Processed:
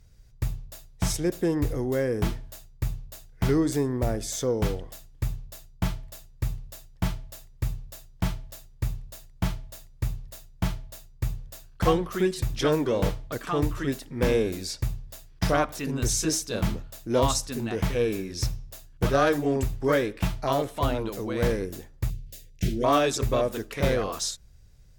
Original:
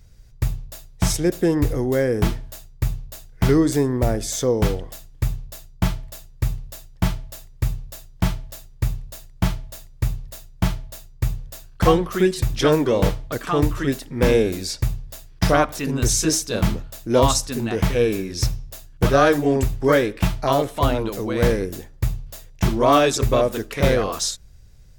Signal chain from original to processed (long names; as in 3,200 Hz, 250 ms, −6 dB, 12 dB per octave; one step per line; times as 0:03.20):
harmonic generator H 3 −21 dB, 5 −26 dB, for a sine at −4.5 dBFS
0:22.10–0:22.84: Butterworth band-reject 1,000 Hz, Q 0.65
level −5.5 dB